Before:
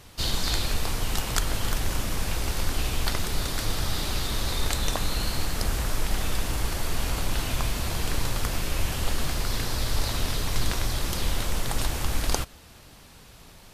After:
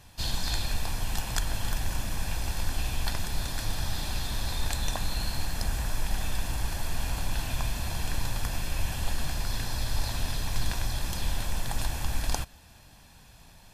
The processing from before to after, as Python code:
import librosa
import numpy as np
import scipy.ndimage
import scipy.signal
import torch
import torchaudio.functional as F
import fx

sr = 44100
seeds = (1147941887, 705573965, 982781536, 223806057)

y = x + 0.46 * np.pad(x, (int(1.2 * sr / 1000.0), 0))[:len(x)]
y = y * 10.0 ** (-5.5 / 20.0)